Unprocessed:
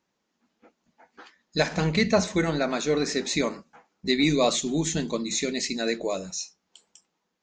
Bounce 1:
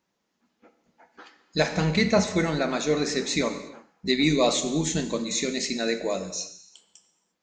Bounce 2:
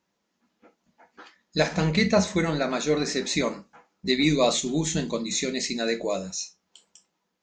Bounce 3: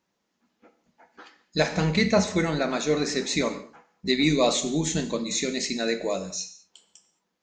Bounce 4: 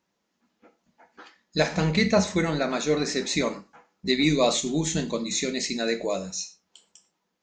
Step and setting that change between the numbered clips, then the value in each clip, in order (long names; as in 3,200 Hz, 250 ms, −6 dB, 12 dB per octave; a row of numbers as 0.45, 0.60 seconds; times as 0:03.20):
reverb whose tail is shaped and stops, gate: 370, 90, 240, 140 milliseconds